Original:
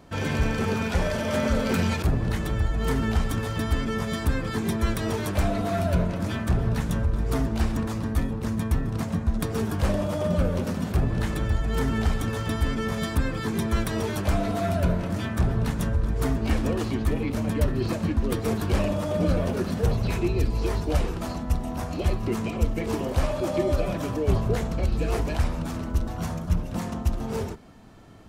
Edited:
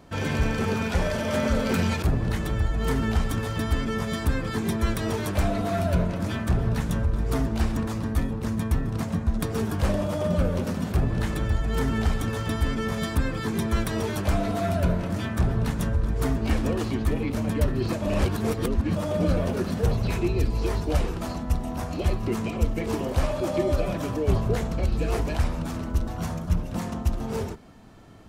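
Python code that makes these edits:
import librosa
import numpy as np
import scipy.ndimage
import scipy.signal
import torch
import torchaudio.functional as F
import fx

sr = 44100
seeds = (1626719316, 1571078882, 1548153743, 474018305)

y = fx.edit(x, sr, fx.reverse_span(start_s=18.02, length_s=0.94), tone=tone)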